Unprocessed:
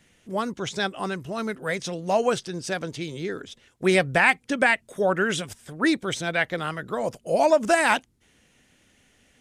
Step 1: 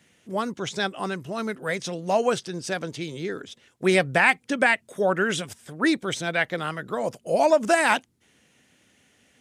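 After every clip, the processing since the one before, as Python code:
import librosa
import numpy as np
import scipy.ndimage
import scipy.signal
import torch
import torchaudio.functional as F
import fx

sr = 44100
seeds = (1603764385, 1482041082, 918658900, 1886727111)

y = scipy.signal.sosfilt(scipy.signal.butter(2, 100.0, 'highpass', fs=sr, output='sos'), x)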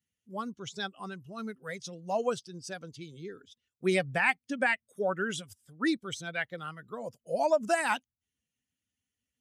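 y = fx.bin_expand(x, sr, power=1.5)
y = F.gain(torch.from_numpy(y), -5.5).numpy()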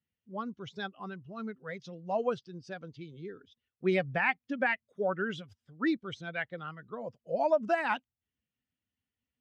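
y = fx.air_absorb(x, sr, metres=250.0)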